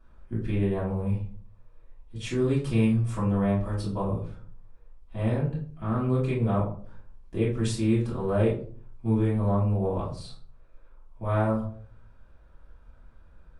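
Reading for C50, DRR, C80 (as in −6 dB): 6.0 dB, −8.5 dB, 11.0 dB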